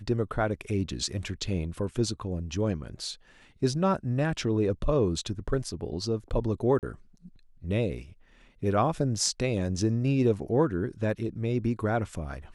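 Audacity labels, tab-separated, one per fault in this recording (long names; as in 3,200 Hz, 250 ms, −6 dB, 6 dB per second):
6.790000	6.830000	drop-out 38 ms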